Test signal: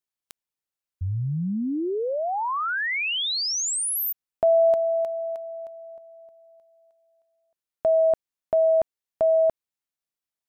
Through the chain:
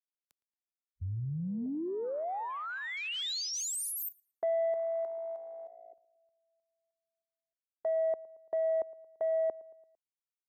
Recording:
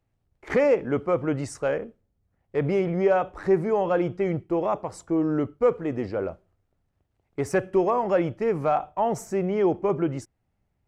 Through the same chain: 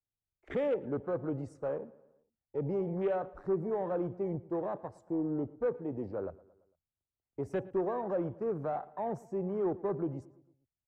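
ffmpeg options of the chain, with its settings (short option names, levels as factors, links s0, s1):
-filter_complex "[0:a]afwtdn=0.0251,acrossover=split=220|700|3600[s0][s1][s2][s3];[s2]alimiter=level_in=1.5:limit=0.0631:level=0:latency=1:release=37,volume=0.668[s4];[s0][s1][s4][s3]amix=inputs=4:normalize=0,asoftclip=type=tanh:threshold=0.2,asplit=2[s5][s6];[s6]adelay=113,lowpass=f=4100:p=1,volume=0.0944,asplit=2[s7][s8];[s8]adelay=113,lowpass=f=4100:p=1,volume=0.53,asplit=2[s9][s10];[s10]adelay=113,lowpass=f=4100:p=1,volume=0.53,asplit=2[s11][s12];[s12]adelay=113,lowpass=f=4100:p=1,volume=0.53[s13];[s5][s7][s9][s11][s13]amix=inputs=5:normalize=0,volume=0.376"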